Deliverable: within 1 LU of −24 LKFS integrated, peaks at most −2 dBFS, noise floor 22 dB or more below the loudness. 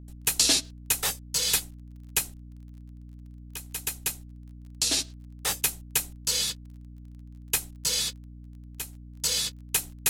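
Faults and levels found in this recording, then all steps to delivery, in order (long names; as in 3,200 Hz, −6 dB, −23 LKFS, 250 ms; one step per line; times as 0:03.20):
crackle rate 19 per second; mains hum 60 Hz; hum harmonics up to 300 Hz; level of the hum −42 dBFS; integrated loudness −26.5 LKFS; sample peak −7.5 dBFS; target loudness −24.0 LKFS
→ click removal
hum removal 60 Hz, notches 5
level +2.5 dB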